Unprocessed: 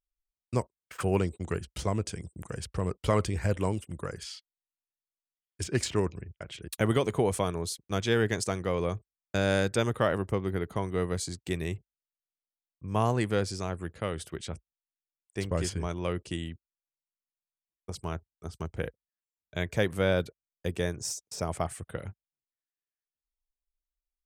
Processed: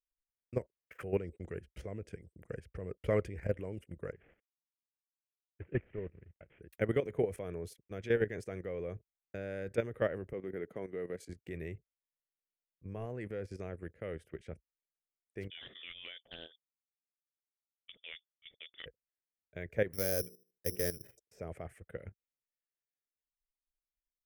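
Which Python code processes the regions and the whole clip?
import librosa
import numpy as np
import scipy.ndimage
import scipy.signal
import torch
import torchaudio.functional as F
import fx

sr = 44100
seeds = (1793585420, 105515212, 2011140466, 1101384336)

y = fx.chain(x, sr, fx.cvsd(bps=16000),
    fx.low_shelf(hz=200.0, db=5.0),
    fx.upward_expand(threshold_db=-40.0, expansion=1.5), at=(4.12, 6.61))
y = fx.chain(y, sr, fx.highpass(hz=210.0, slope=12),
    fx.low_shelf(hz=270.0, db=3.0), at=(10.33, 11.29))
y = fx.chain(y, sr, fx.freq_invert(carrier_hz=3500),
    fx.doppler_dist(depth_ms=0.24), at=(15.5, 18.86))
y = fx.chain(y, sr, fx.hum_notches(base_hz=60, count=8),
    fx.resample_bad(factor=8, down='filtered', up='zero_stuff'),
    fx.doppler_dist(depth_ms=0.12), at=(19.93, 21.18))
y = fx.low_shelf(y, sr, hz=67.0, db=4.0)
y = fx.level_steps(y, sr, step_db=12)
y = fx.graphic_eq(y, sr, hz=(500, 1000, 2000, 4000, 8000), db=(9, -11, 10, -12, -11))
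y = y * librosa.db_to_amplitude(-7.0)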